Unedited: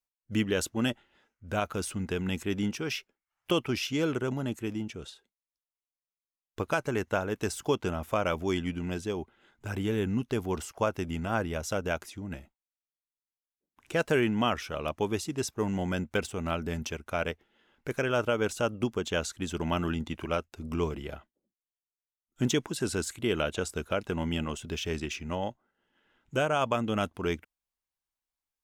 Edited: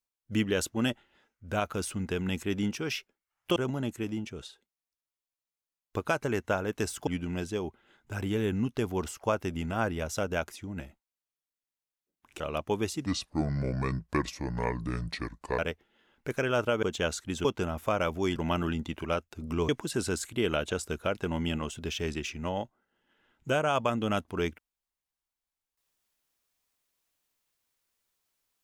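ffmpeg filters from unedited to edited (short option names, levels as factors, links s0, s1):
-filter_complex "[0:a]asplit=10[s0][s1][s2][s3][s4][s5][s6][s7][s8][s9];[s0]atrim=end=3.562[s10];[s1]atrim=start=4.188:end=7.702[s11];[s2]atrim=start=8.608:end=13.942[s12];[s3]atrim=start=14.708:end=15.374[s13];[s4]atrim=start=15.37:end=17.19,asetpts=PTS-STARTPTS,asetrate=31752,aresample=44100[s14];[s5]atrim=start=17.186:end=18.432[s15];[s6]atrim=start=18.948:end=19.572[s16];[s7]atrim=start=7.698:end=8.612[s17];[s8]atrim=start=19.568:end=20.902[s18];[s9]atrim=start=22.548[s19];[s10][s11]acrossfade=d=0.004:c1=hsin:c2=hsin[s20];[s20][s12]acrossfade=d=0.004:c1=hsin:c2=hsin[s21];[s21][s13]acrossfade=d=0.004:c1=hsin:c2=hsin[s22];[s22][s14]acrossfade=d=0.004:c1=hsin:c2=hsin[s23];[s23][s15]acrossfade=d=0.004:c1=hsin:c2=hsin[s24];[s24][s16]acrossfade=d=0.004:c1=hsin:c2=hsin[s25];[s25][s17]acrossfade=d=0.004:c1=hsin:c2=hsin[s26];[s26][s18]acrossfade=d=0.004:c1=hsin:c2=hsin[s27];[s27][s19]acrossfade=d=0.004:c1=hsin:c2=hsin"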